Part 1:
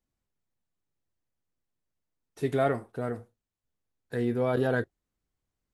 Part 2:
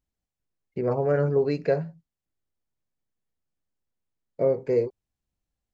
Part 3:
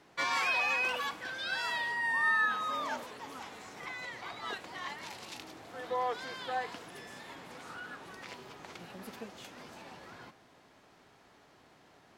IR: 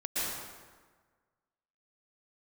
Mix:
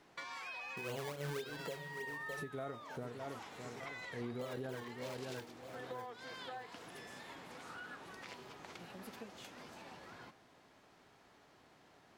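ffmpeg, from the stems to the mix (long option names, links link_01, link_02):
-filter_complex "[0:a]volume=-1.5dB,asplit=2[link_01][link_02];[link_02]volume=-17dB[link_03];[1:a]acontrast=88,flanger=delay=9.4:depth=3.4:regen=-78:speed=1.3:shape=sinusoidal,acrusher=samples=23:mix=1:aa=0.000001:lfo=1:lforange=23:lforate=4,volume=-11.5dB,asplit=2[link_04][link_05];[link_05]volume=-17dB[link_06];[2:a]acompressor=threshold=-40dB:ratio=10,volume=-3.5dB[link_07];[link_01][link_04]amix=inputs=2:normalize=0,tremolo=f=3:d=0.78,acompressor=threshold=-31dB:ratio=6,volume=0dB[link_08];[link_03][link_06]amix=inputs=2:normalize=0,aecho=0:1:609|1218|1827|2436|3045:1|0.35|0.122|0.0429|0.015[link_09];[link_07][link_08][link_09]amix=inputs=3:normalize=0,alimiter=level_in=9.5dB:limit=-24dB:level=0:latency=1:release=327,volume=-9.5dB"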